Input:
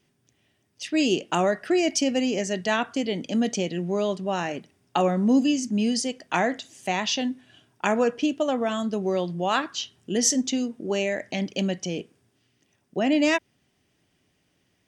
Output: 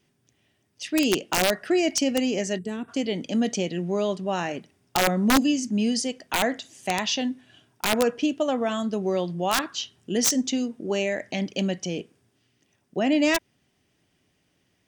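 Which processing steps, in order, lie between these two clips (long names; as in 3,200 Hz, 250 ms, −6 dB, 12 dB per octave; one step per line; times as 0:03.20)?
gain on a spectral selection 0:02.58–0:02.89, 460–7,400 Hz −17 dB
wrap-around overflow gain 12.5 dB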